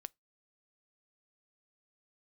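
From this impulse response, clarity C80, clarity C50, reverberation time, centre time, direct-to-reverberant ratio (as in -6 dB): 44.5 dB, 35.0 dB, 0.20 s, 1 ms, 20.5 dB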